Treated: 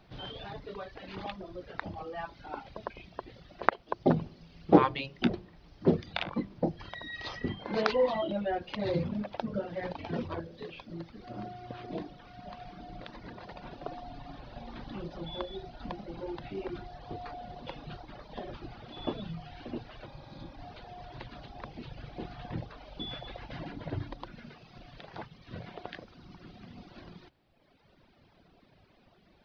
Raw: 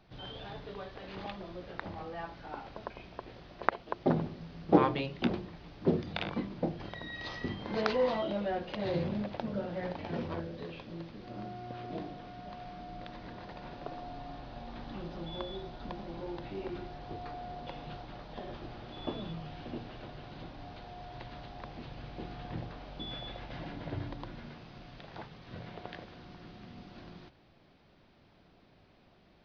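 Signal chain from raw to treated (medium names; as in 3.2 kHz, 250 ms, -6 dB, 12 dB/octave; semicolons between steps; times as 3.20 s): reverb removal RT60 1.7 s; spectral replace 20.09–20.49 s, 380–3300 Hz after; trim +3.5 dB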